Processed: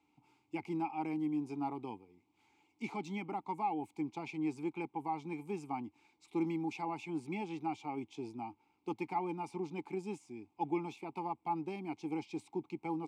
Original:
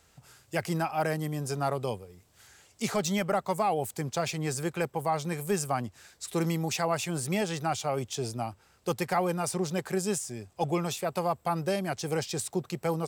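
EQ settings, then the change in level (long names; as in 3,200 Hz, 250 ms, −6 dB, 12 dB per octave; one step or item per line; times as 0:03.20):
formant filter u
notch filter 1,900 Hz, Q 7.7
+4.5 dB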